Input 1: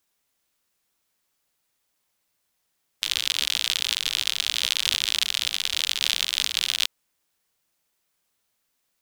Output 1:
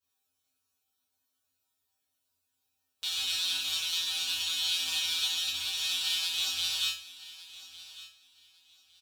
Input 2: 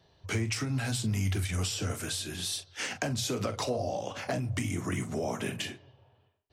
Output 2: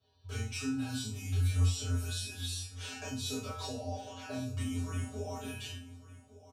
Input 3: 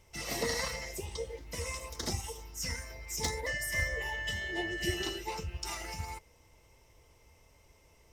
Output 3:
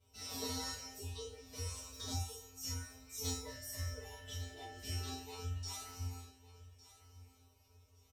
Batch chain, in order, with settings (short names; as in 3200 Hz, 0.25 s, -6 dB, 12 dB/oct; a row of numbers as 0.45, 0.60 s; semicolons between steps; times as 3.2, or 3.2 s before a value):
bell 2000 Hz -13.5 dB 0.27 oct; resonator 87 Hz, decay 0.37 s, harmonics odd, mix 100%; on a send: feedback echo 1.156 s, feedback 21%, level -17 dB; on the sum: non-linear reverb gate 0.1 s falling, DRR -6.5 dB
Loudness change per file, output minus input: -5.5, -4.0, -7.5 LU